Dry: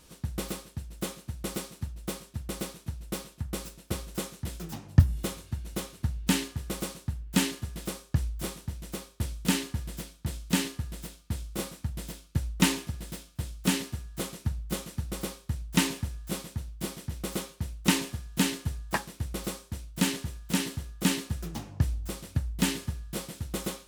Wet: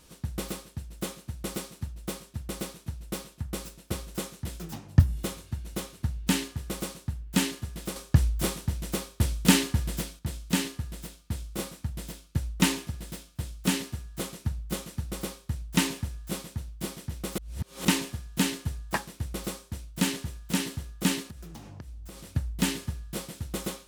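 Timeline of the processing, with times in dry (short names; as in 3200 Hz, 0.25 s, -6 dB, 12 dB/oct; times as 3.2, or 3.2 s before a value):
7.96–10.19 gain +6.5 dB
17.38–17.85 reverse
21.22–22.34 compressor 10:1, threshold -39 dBFS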